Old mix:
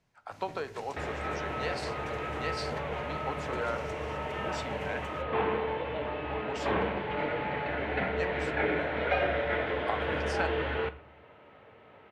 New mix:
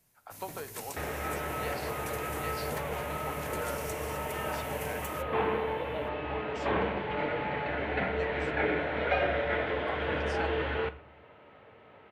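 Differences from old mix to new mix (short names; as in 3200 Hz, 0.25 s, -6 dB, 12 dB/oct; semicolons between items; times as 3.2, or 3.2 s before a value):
speech -5.5 dB; first sound: remove air absorption 150 m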